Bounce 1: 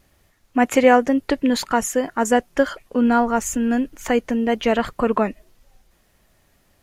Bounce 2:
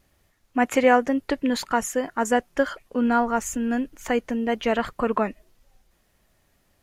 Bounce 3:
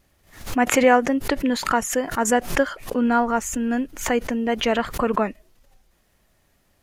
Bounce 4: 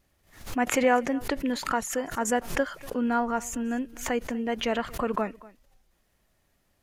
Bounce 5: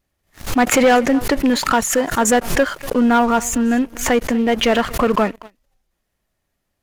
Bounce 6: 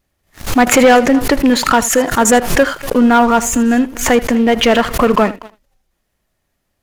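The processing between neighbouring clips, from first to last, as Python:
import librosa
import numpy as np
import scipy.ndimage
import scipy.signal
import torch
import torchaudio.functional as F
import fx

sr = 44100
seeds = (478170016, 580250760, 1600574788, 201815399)

y1 = fx.dynamic_eq(x, sr, hz=1400.0, q=0.7, threshold_db=-28.0, ratio=4.0, max_db=3)
y1 = y1 * librosa.db_to_amplitude(-5.0)
y2 = fx.pre_swell(y1, sr, db_per_s=120.0)
y2 = y2 * librosa.db_to_amplitude(1.5)
y3 = y2 + 10.0 ** (-21.0 / 20.0) * np.pad(y2, (int(241 * sr / 1000.0), 0))[:len(y2)]
y3 = y3 * librosa.db_to_amplitude(-6.5)
y4 = fx.leveller(y3, sr, passes=3)
y4 = y4 * librosa.db_to_amplitude(2.0)
y5 = y4 + 10.0 ** (-17.0 / 20.0) * np.pad(y4, (int(79 * sr / 1000.0), 0))[:len(y4)]
y5 = y5 * librosa.db_to_amplitude(4.5)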